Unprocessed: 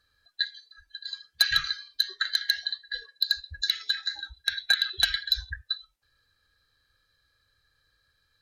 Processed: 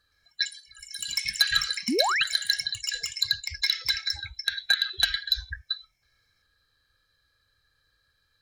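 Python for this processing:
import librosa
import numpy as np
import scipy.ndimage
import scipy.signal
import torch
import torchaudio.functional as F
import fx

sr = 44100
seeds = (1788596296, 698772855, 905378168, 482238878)

y = fx.echo_pitch(x, sr, ms=117, semitones=5, count=3, db_per_echo=-6.0)
y = fx.spec_paint(y, sr, seeds[0], shape='rise', start_s=1.88, length_s=0.36, low_hz=210.0, high_hz=3400.0, level_db=-25.0)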